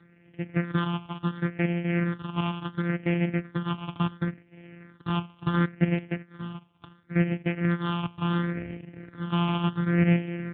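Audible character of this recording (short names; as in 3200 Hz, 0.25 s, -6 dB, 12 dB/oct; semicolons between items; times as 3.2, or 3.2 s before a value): a buzz of ramps at a fixed pitch in blocks of 256 samples; phasing stages 6, 0.71 Hz, lowest notch 490–1100 Hz; AMR-NB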